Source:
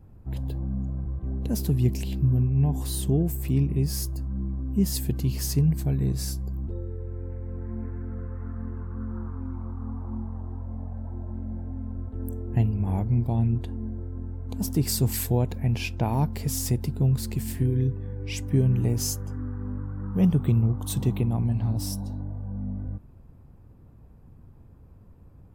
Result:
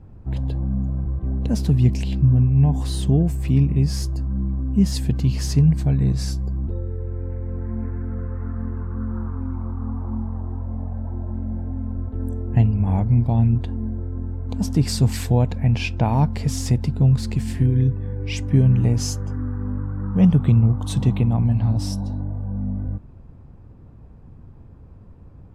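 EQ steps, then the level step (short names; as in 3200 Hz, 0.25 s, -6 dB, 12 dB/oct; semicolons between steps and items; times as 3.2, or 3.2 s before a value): dynamic EQ 370 Hz, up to -7 dB, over -46 dBFS, Q 3.2; air absorption 76 m; +6.5 dB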